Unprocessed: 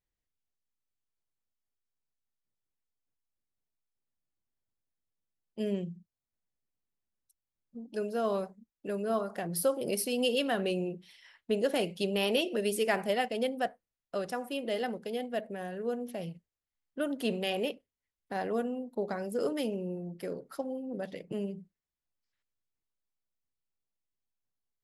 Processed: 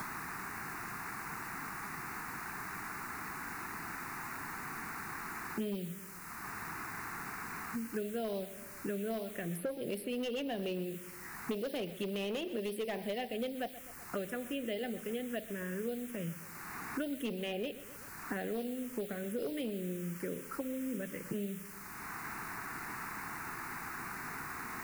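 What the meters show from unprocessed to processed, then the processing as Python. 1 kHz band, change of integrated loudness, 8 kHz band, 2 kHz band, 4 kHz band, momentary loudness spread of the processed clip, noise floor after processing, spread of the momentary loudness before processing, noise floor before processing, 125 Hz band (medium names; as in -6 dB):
-2.5 dB, -6.5 dB, -2.5 dB, +0.5 dB, -7.5 dB, 5 LU, -49 dBFS, 11 LU, under -85 dBFS, -1.5 dB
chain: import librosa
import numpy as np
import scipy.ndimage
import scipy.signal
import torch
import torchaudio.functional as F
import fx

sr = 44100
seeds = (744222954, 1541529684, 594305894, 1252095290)

p1 = fx.vibrato(x, sr, rate_hz=7.1, depth_cents=7.4)
p2 = fx.quant_dither(p1, sr, seeds[0], bits=8, dither='triangular')
p3 = fx.env_phaser(p2, sr, low_hz=490.0, high_hz=1300.0, full_db=-26.5)
p4 = np.clip(10.0 ** (27.0 / 20.0) * p3, -1.0, 1.0) / 10.0 ** (27.0 / 20.0)
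p5 = p4 + fx.echo_feedback(p4, sr, ms=126, feedback_pct=40, wet_db=-17.0, dry=0)
p6 = fx.band_squash(p5, sr, depth_pct=100)
y = p6 * 10.0 ** (-2.5 / 20.0)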